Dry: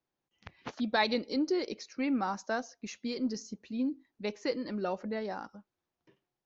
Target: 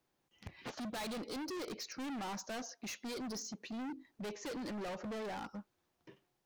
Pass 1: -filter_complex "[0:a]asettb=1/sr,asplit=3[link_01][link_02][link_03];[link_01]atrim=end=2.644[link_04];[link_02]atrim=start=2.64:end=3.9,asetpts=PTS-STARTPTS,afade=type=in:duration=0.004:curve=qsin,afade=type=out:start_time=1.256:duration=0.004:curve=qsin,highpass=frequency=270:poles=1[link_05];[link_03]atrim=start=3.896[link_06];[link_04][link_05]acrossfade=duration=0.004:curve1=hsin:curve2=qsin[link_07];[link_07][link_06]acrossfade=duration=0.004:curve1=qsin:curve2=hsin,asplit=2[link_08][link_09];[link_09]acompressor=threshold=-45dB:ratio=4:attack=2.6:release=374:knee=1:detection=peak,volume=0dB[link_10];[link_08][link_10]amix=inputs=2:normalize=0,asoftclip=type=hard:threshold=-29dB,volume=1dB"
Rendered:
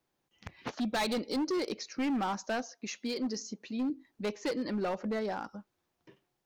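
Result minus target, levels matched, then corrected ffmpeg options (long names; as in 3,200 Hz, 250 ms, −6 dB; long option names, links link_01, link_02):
hard clipping: distortion −7 dB
-filter_complex "[0:a]asettb=1/sr,asplit=3[link_01][link_02][link_03];[link_01]atrim=end=2.644[link_04];[link_02]atrim=start=2.64:end=3.9,asetpts=PTS-STARTPTS,afade=type=in:duration=0.004:curve=qsin,afade=type=out:start_time=1.256:duration=0.004:curve=qsin,highpass=frequency=270:poles=1[link_05];[link_03]atrim=start=3.896[link_06];[link_04][link_05]acrossfade=duration=0.004:curve1=hsin:curve2=qsin[link_07];[link_07][link_06]acrossfade=duration=0.004:curve1=qsin:curve2=hsin,asplit=2[link_08][link_09];[link_09]acompressor=threshold=-45dB:ratio=4:attack=2.6:release=374:knee=1:detection=peak,volume=0dB[link_10];[link_08][link_10]amix=inputs=2:normalize=0,asoftclip=type=hard:threshold=-41dB,volume=1dB"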